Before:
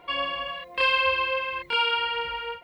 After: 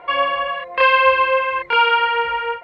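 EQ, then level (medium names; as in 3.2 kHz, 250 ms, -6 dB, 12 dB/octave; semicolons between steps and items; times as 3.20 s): distance through air 58 m; tone controls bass -1 dB, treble -4 dB; high-order bell 1 kHz +9 dB 2.6 oct; +3.0 dB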